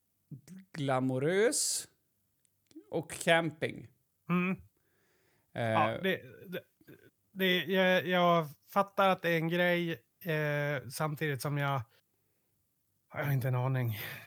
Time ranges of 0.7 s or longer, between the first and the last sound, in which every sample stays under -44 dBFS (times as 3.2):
1.85–2.71
4.6–5.56
11.83–13.14